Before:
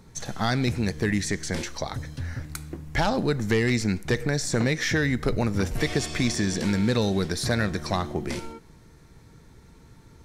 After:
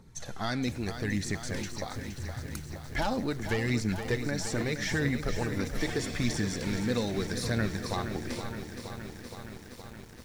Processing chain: phaser 0.79 Hz, delay 4.2 ms, feedback 39%; bit-crushed delay 469 ms, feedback 80%, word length 7-bit, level -9 dB; trim -7.5 dB

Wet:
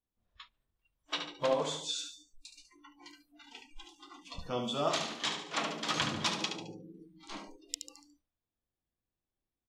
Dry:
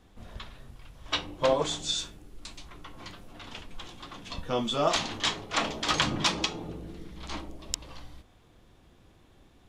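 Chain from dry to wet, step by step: on a send: feedback delay 72 ms, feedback 45%, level -7 dB; on the sum: spectral noise reduction 29 dB; trim -6.5 dB

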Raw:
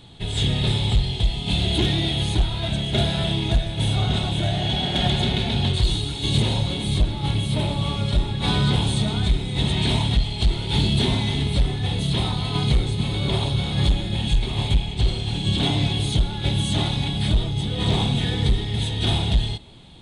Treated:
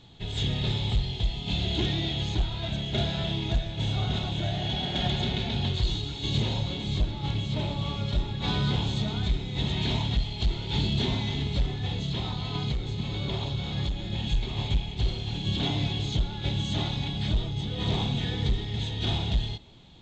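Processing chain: 11.95–14.12 s: compression 6:1, threshold -19 dBFS, peak gain reduction 5.5 dB; trim -6.5 dB; A-law 128 kbps 16 kHz

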